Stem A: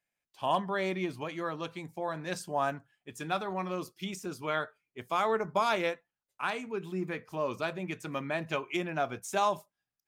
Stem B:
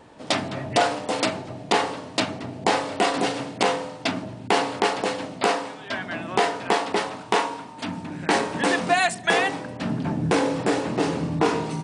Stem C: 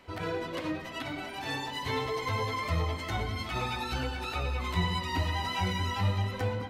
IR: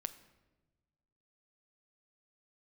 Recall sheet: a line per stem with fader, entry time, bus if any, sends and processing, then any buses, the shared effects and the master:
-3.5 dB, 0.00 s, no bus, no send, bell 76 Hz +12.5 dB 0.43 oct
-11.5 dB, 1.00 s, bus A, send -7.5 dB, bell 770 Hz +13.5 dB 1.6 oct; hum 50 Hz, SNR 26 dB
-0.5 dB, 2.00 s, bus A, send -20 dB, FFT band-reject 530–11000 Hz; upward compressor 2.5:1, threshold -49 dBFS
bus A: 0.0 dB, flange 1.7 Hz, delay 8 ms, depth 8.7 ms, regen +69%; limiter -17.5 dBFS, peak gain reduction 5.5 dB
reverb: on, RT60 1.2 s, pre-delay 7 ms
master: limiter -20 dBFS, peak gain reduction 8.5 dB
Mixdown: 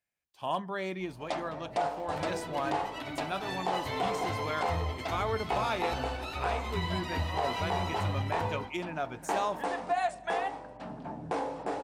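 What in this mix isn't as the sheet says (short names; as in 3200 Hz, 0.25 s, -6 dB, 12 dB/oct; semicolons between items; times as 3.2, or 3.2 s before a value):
stem B -11.5 dB -> -19.0 dB; stem C: missing FFT band-reject 530–11000 Hz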